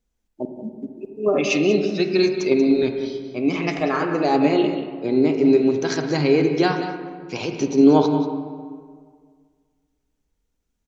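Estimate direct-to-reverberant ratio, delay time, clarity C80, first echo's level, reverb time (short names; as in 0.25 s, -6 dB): 4.5 dB, 0.185 s, 6.0 dB, -11.0 dB, 1.9 s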